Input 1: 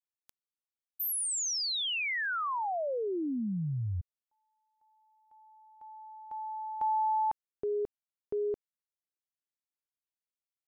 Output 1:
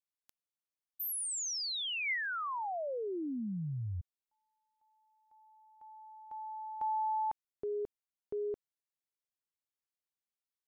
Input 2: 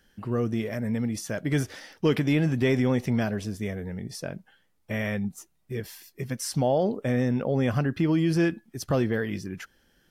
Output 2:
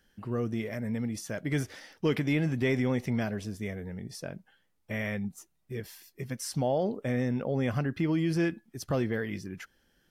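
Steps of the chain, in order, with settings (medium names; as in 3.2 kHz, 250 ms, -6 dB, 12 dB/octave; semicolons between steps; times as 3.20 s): dynamic bell 2.1 kHz, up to +5 dB, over -50 dBFS, Q 6.7; trim -4.5 dB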